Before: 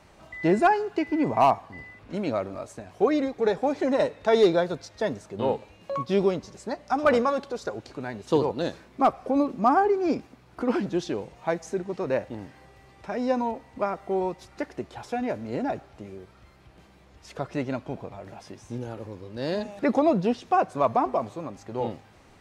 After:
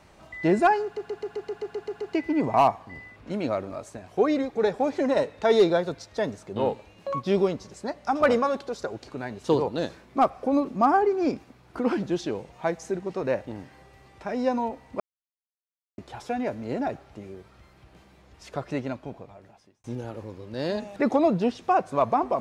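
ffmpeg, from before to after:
-filter_complex "[0:a]asplit=13[a][b][c][d][e][f][g][h][i][j][k][l][m];[a]atrim=end=0.972[n];[b]atrim=start=0.838:end=0.972[o];[c]atrim=start=0.838:end=0.972[p];[d]atrim=start=0.838:end=0.972[q];[e]atrim=start=0.838:end=0.972[r];[f]atrim=start=0.838:end=0.972[s];[g]atrim=start=0.838:end=0.972[t];[h]atrim=start=0.838:end=0.972[u];[i]atrim=start=0.838:end=0.972[v];[j]atrim=start=0.838:end=13.83,asetpts=PTS-STARTPTS,afade=t=out:st=12.988:d=0.004:c=hsin[w];[k]atrim=start=13.83:end=14.81,asetpts=PTS-STARTPTS,volume=0[x];[l]atrim=start=14.81:end=18.67,asetpts=PTS-STARTPTS,afade=t=in:d=0.004:c=hsin,afade=t=out:st=2.71:d=1.15[y];[m]atrim=start=18.67,asetpts=PTS-STARTPTS,afade=t=in:d=0.004:c=hsin[z];[n][o]acrossfade=d=0.004:c1=hsin:c2=hsin[aa];[aa][p]acrossfade=d=0.004:c1=hsin:c2=hsin[ab];[ab][q]acrossfade=d=0.004:c1=hsin:c2=hsin[ac];[ac][r]acrossfade=d=0.004:c1=hsin:c2=hsin[ad];[ad][s]acrossfade=d=0.004:c1=hsin:c2=hsin[ae];[ae][t]acrossfade=d=0.004:c1=hsin:c2=hsin[af];[af][u]acrossfade=d=0.004:c1=hsin:c2=hsin[ag];[ag][v]acrossfade=d=0.004:c1=hsin:c2=hsin[ah];[w][x][y][z]concat=n=4:v=0:a=1[ai];[ah][ai]acrossfade=d=0.004:c1=hsin:c2=hsin"

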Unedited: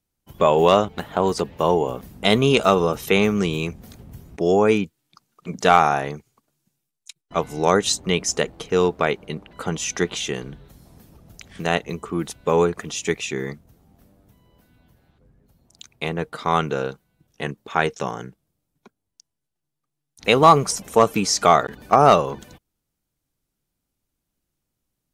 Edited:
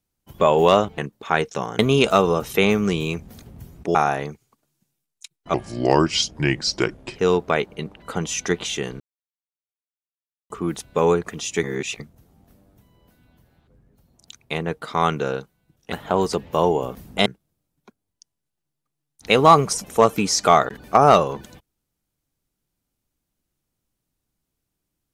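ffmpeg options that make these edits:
-filter_complex "[0:a]asplit=12[a][b][c][d][e][f][g][h][i][j][k][l];[a]atrim=end=0.982[m];[b]atrim=start=17.428:end=18.242[n];[c]atrim=start=2.318:end=4.482[o];[d]atrim=start=5.798:end=7.394[p];[e]atrim=start=7.39:end=8.67,asetpts=PTS-STARTPTS,asetrate=34839,aresample=44100,atrim=end_sample=71453,asetpts=PTS-STARTPTS[q];[f]atrim=start=8.666:end=10.51,asetpts=PTS-STARTPTS,afade=t=out:st=1.84:d=0.004:c=hsin[r];[g]atrim=start=10.51:end=12.01,asetpts=PTS-STARTPTS,volume=0[s];[h]atrim=start=12.01:end=13.142,asetpts=PTS-STARTPTS,afade=t=in:d=0.004:c=hsin[t];[i]atrim=start=13.138:end=13.512,asetpts=PTS-STARTPTS,areverse[u];[j]atrim=start=13.508:end=17.432[v];[k]atrim=start=0.978:end=2.322[w];[l]atrim=start=18.238[x];[m][n]acrossfade=d=0.004:c1=hsin:c2=hsin[y];[y][o]acrossfade=d=0.004:c1=hsin:c2=hsin[z];[z][p]acrossfade=d=0.004:c1=hsin:c2=hsin[aa];[aa][q]acrossfade=d=0.004:c1=hsin:c2=hsin[ab];[r][s][t]concat=n=3:v=0:a=1[ac];[ab][ac]acrossfade=d=0.004:c1=hsin:c2=hsin[ad];[ad][u]acrossfade=d=0.004:c1=hsin:c2=hsin[ae];[ae][v]acrossfade=d=0.004:c1=hsin:c2=hsin[af];[af][w]acrossfade=d=0.004:c1=hsin:c2=hsin[ag];[ag][x]acrossfade=d=0.004:c1=hsin:c2=hsin"

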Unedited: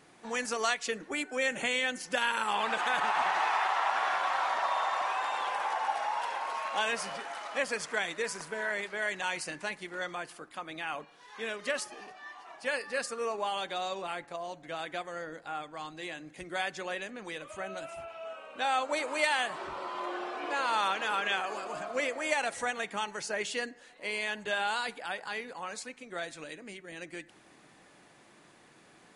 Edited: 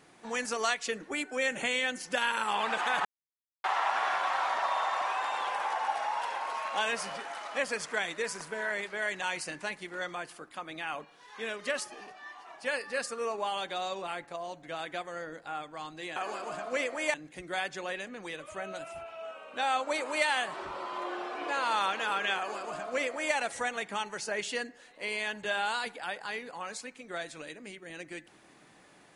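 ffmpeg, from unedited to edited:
-filter_complex "[0:a]asplit=5[a][b][c][d][e];[a]atrim=end=3.05,asetpts=PTS-STARTPTS,afade=t=out:st=3.046:d=0.004:c=hsin[f];[b]atrim=start=3.05:end=3.64,asetpts=PTS-STARTPTS,volume=0[g];[c]atrim=start=3.64:end=16.162,asetpts=PTS-STARTPTS,afade=t=in:d=0.004:c=hsin[h];[d]atrim=start=21.388:end=22.372[i];[e]atrim=start=16.158[j];[f][g][h]concat=n=3:v=0:a=1[k];[k][i]acrossfade=d=0.004:c1=hsin:c2=hsin[l];[l][j]acrossfade=d=0.004:c1=hsin:c2=hsin"

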